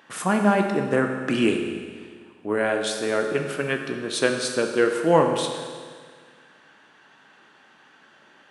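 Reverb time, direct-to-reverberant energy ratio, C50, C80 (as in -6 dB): 1.8 s, 3.5 dB, 5.0 dB, 6.5 dB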